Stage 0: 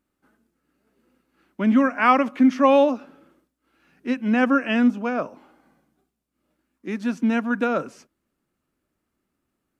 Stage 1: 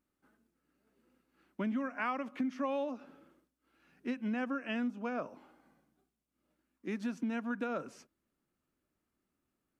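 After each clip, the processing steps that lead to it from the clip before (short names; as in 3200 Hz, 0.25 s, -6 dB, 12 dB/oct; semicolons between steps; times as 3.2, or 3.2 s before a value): compressor 5:1, threshold -26 dBFS, peak gain reduction 13.5 dB; gain -7 dB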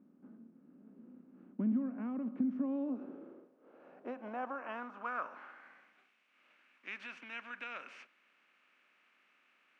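per-bin compression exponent 0.6; band-pass sweep 220 Hz -> 2400 Hz, 2.48–6.08; gain +2 dB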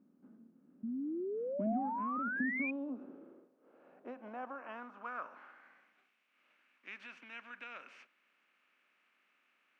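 painted sound rise, 0.83–2.71, 220–2500 Hz -34 dBFS; gain -4 dB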